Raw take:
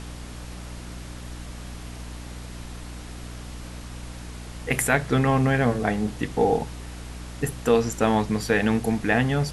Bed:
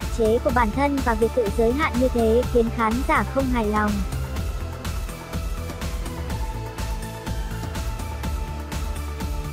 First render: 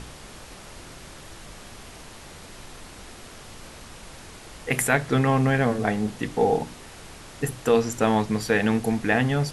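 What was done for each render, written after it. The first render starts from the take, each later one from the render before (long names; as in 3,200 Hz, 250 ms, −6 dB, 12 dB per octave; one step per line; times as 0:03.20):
hum removal 60 Hz, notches 5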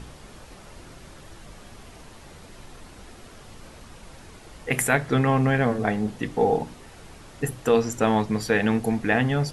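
broadband denoise 6 dB, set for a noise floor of −44 dBFS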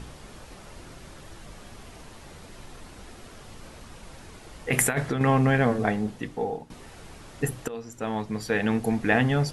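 0:04.71–0:05.21: compressor whose output falls as the input rises −23 dBFS, ratio −0.5
0:05.80–0:06.70: fade out, to −16.5 dB
0:07.68–0:09.09: fade in, from −20.5 dB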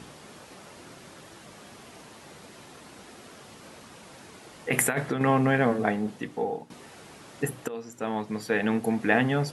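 high-pass filter 160 Hz 12 dB per octave
dynamic equaliser 5,800 Hz, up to −4 dB, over −48 dBFS, Q 0.85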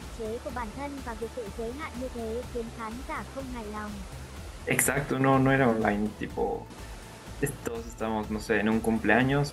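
mix in bed −15.5 dB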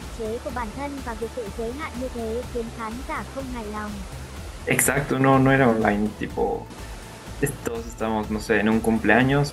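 level +5.5 dB
brickwall limiter −3 dBFS, peak gain reduction 1.5 dB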